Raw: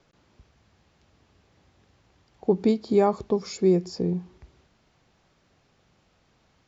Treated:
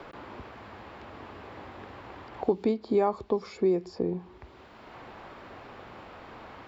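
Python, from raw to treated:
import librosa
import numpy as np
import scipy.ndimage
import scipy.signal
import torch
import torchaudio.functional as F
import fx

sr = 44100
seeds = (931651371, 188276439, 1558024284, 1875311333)

y = fx.graphic_eq_15(x, sr, hz=(160, 1000, 6300), db=(-11, 4, -12))
y = fx.band_squash(y, sr, depth_pct=70)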